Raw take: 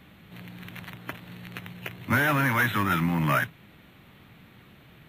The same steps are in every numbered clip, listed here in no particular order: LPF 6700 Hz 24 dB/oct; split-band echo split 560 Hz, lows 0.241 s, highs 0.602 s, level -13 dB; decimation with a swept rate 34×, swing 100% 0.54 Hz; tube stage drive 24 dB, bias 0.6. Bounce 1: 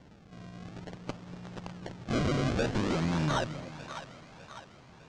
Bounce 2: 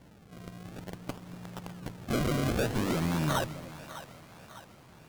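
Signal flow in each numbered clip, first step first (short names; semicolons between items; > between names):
decimation with a swept rate > split-band echo > tube stage > LPF; LPF > decimation with a swept rate > tube stage > split-band echo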